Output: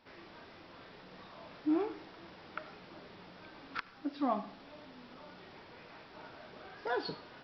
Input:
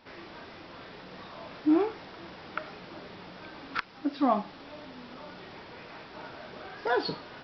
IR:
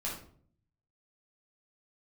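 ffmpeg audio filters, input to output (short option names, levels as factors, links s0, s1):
-filter_complex "[0:a]asplit=2[s0][s1];[1:a]atrim=start_sample=2205,adelay=75[s2];[s1][s2]afir=irnorm=-1:irlink=0,volume=0.0891[s3];[s0][s3]amix=inputs=2:normalize=0,volume=0.422"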